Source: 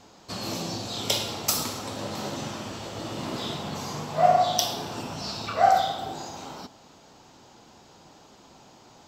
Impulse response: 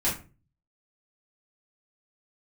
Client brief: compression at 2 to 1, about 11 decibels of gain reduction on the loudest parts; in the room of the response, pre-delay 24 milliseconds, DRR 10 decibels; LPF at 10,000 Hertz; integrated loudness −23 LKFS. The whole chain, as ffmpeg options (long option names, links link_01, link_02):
-filter_complex "[0:a]lowpass=10000,acompressor=threshold=-35dB:ratio=2,asplit=2[link_01][link_02];[1:a]atrim=start_sample=2205,adelay=24[link_03];[link_02][link_03]afir=irnorm=-1:irlink=0,volume=-20dB[link_04];[link_01][link_04]amix=inputs=2:normalize=0,volume=11.5dB"